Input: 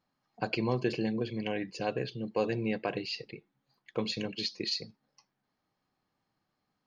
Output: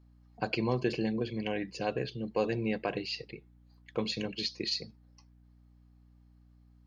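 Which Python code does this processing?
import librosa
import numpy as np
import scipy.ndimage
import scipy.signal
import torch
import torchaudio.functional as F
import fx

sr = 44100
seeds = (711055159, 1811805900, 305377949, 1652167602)

y = fx.add_hum(x, sr, base_hz=60, snr_db=24)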